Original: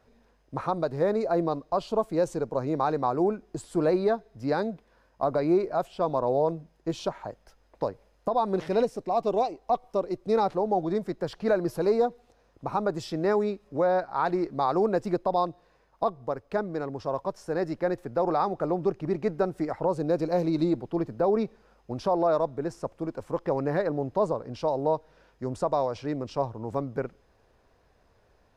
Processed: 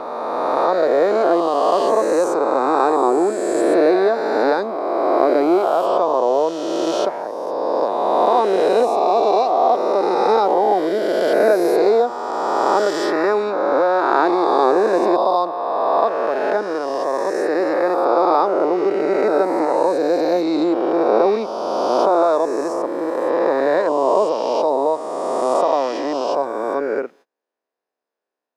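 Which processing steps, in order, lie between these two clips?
reverse spectral sustain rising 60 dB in 2.82 s; high-pass 270 Hz 24 dB/octave; gate -50 dBFS, range -28 dB; trim +5.5 dB

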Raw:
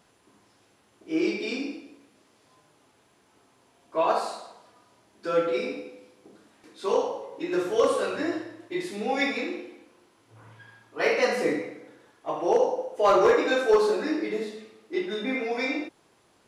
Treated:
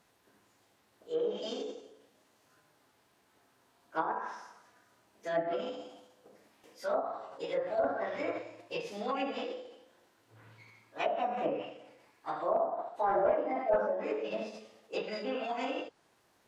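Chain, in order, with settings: formant shift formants +5 st; low-pass that closes with the level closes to 840 Hz, closed at -19.5 dBFS; trim -6.5 dB

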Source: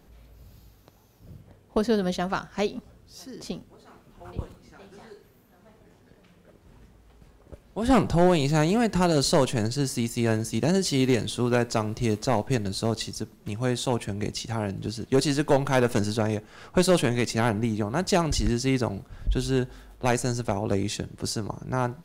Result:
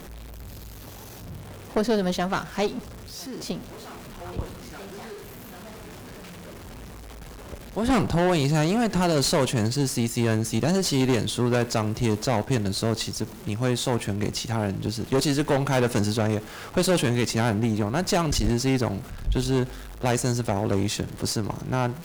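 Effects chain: jump at every zero crossing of -38.5 dBFS; valve stage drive 21 dB, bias 0.6; trim +4.5 dB

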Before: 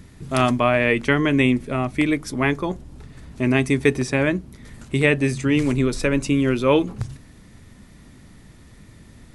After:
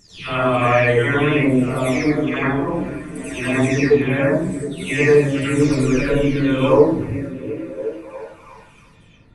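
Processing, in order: delay that grows with frequency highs early, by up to 513 ms; wow and flutter 18 cents; gate -41 dBFS, range -7 dB; on a send: repeats whose band climbs or falls 356 ms, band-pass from 170 Hz, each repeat 0.7 oct, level -6.5 dB; on the sum: plate-style reverb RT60 0.52 s, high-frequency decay 0.5×, pre-delay 75 ms, DRR -7.5 dB; trim -4 dB

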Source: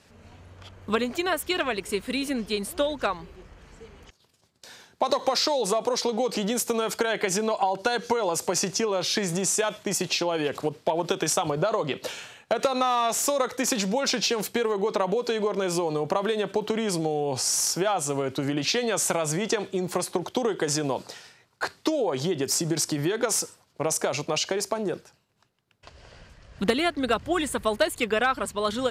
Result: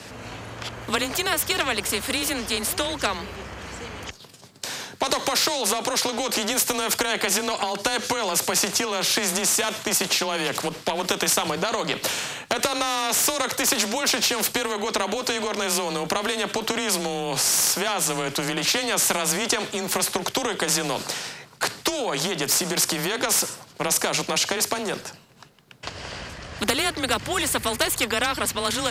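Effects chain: frequency shift +22 Hz; spectrum-flattening compressor 2:1; trim +3.5 dB

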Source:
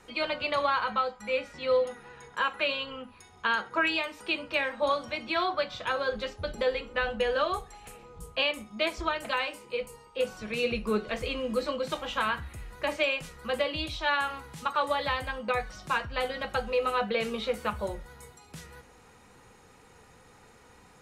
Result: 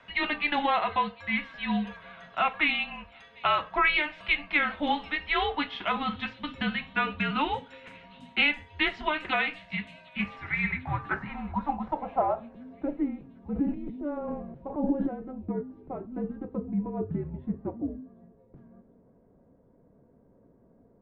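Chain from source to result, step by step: graphic EQ 125/1000/2000 Hz -7/+5/+7 dB; 13.36–15.10 s: transient shaper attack -1 dB, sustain +11 dB; frequency shift -300 Hz; low-pass sweep 3.1 kHz -> 360 Hz, 9.93–13.19 s; feedback echo behind a high-pass 749 ms, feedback 52%, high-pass 4.9 kHz, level -13 dB; trim -5 dB

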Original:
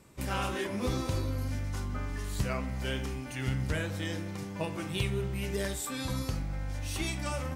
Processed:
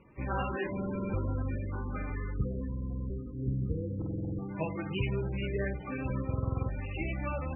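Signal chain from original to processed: time-frequency box 2.33–4.11 s, 530–7400 Hz -28 dB; echo that smears into a reverb 503 ms, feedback 55%, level -13 dB; buffer glitch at 0.72/2.68/3.97/6.26 s, samples 2048, times 8; MP3 8 kbps 22.05 kHz

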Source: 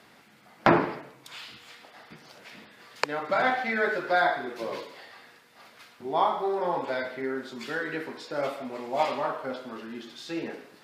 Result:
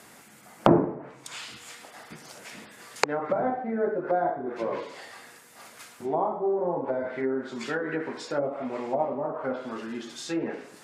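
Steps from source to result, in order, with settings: resonant high shelf 5.7 kHz +9.5 dB, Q 1.5; low-pass that closes with the level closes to 560 Hz, closed at -25.5 dBFS; trim +4 dB

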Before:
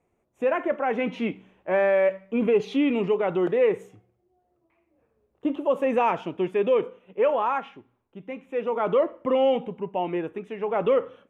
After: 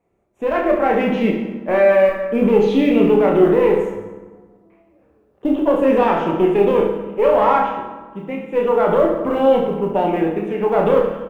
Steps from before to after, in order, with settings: single-diode clipper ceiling -20.5 dBFS; treble shelf 2.4 kHz -7 dB; hum notches 50/100/150/200 Hz; peak limiter -18.5 dBFS, peak gain reduction 5 dB; level rider gain up to 7 dB; short-mantissa float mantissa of 6-bit; reverse bouncing-ball echo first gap 30 ms, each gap 1.25×, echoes 5; reverberation RT60 1.4 s, pre-delay 5 ms, DRR 5 dB; trim +2 dB

